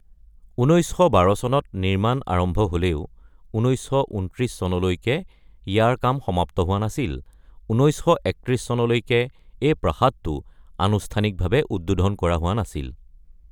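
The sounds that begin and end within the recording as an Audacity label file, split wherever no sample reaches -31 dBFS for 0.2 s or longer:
0.580000	3.050000	sound
3.540000	5.220000	sound
5.670000	7.200000	sound
7.700000	9.280000	sound
9.620000	10.400000	sound
10.790000	12.900000	sound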